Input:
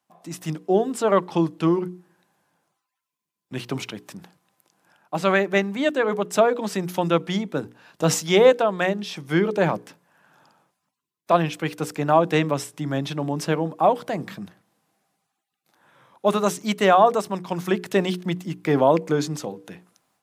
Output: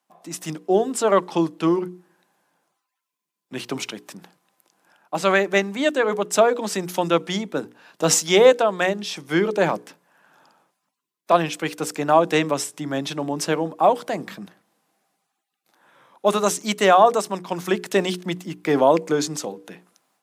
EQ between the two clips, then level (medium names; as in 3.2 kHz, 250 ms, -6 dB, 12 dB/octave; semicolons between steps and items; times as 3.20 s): high-pass 210 Hz 12 dB/octave; dynamic bell 7.5 kHz, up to +6 dB, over -46 dBFS, Q 0.79; +1.5 dB